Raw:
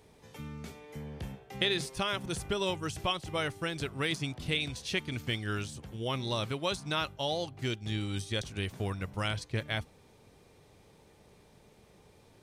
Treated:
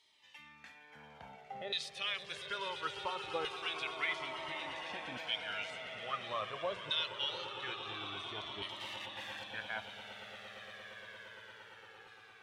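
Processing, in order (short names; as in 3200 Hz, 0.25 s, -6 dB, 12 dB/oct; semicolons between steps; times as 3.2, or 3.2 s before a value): limiter -23.5 dBFS, peak gain reduction 10 dB; 8.76–9.43 wrapped overs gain 39.5 dB; LFO band-pass saw down 0.58 Hz 620–3800 Hz; swelling echo 0.115 s, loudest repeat 8, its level -14.5 dB; cascading flanger falling 0.23 Hz; gain +8.5 dB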